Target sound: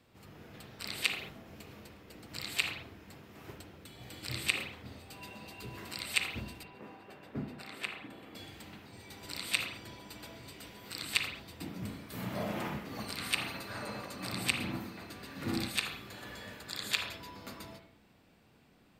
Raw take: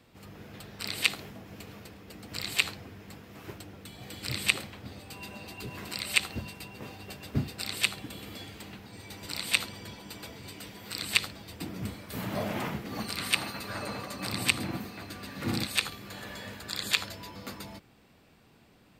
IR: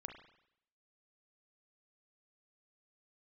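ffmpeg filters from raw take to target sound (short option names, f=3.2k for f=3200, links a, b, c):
-filter_complex "[0:a]asettb=1/sr,asplit=3[a][b][c];[a]atrim=end=6.634[d];[b]atrim=start=6.63:end=8.35,asetpts=PTS-STARTPTS,afade=t=in:d=0.004:c=qsin,afade=t=out:st=1.716:d=0.004:c=qsin,acrossover=split=180 2400:gain=0.224 1 0.2[e][f][g];[e][f][g]amix=inputs=3:normalize=0[h];[c]atrim=start=8.346[i];[d][h]acrossfade=d=0.004:c1=hsin:c2=qsin[j];[j][i]acrossfade=d=0.004:c1=qsin:c2=hsin[k];[1:a]atrim=start_sample=2205,afade=t=out:st=0.27:d=0.01,atrim=end_sample=12348[l];[k][l]afir=irnorm=-1:irlink=0"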